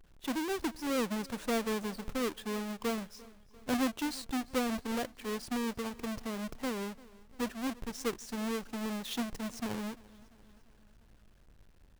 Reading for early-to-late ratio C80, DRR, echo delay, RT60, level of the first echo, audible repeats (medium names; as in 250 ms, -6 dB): no reverb, no reverb, 345 ms, no reverb, -22.0 dB, 3